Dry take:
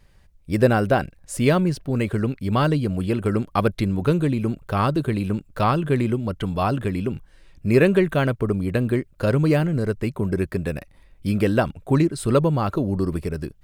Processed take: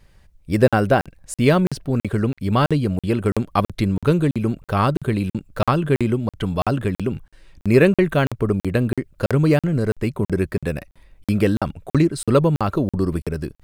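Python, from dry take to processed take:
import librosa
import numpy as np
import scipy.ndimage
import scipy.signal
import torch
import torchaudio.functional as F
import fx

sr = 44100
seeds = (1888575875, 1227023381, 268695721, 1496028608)

y = fx.buffer_crackle(x, sr, first_s=0.68, period_s=0.33, block=2048, kind='zero')
y = y * librosa.db_to_amplitude(2.5)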